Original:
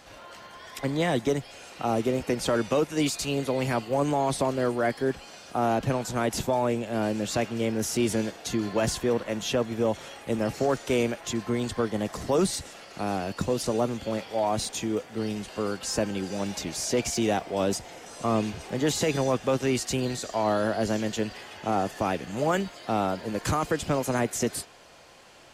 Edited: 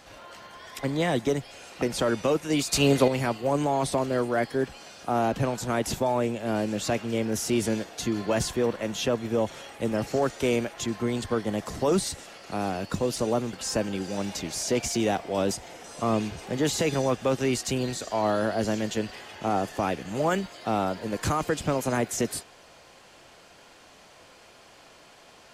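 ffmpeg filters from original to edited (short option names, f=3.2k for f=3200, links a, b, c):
-filter_complex "[0:a]asplit=5[a][b][c][d][e];[a]atrim=end=1.822[f];[b]atrim=start=2.288:end=3.202[g];[c]atrim=start=3.198:end=3.552,asetpts=PTS-STARTPTS,volume=7.5dB[h];[d]atrim=start=3.548:end=14.002[i];[e]atrim=start=15.748[j];[f][g]acrossfade=d=0.004:c1=hsin:c2=hsin[k];[k][h]acrossfade=d=0.004:c1=hsin:c2=hsin[l];[l][i]acrossfade=d=0.004:c1=hsin:c2=hsin[m];[m][j]acrossfade=d=0.004:c1=hsin:c2=hsin"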